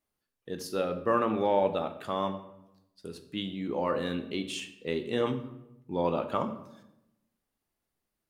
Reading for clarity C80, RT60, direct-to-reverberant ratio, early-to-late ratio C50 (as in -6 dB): 13.5 dB, 0.90 s, 7.0 dB, 11.0 dB